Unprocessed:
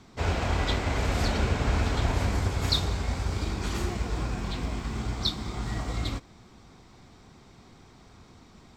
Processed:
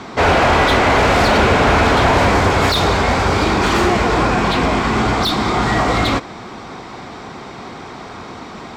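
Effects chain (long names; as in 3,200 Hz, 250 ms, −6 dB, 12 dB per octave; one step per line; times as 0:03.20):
mid-hump overdrive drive 27 dB, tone 1,300 Hz, clips at −10.5 dBFS
level +8.5 dB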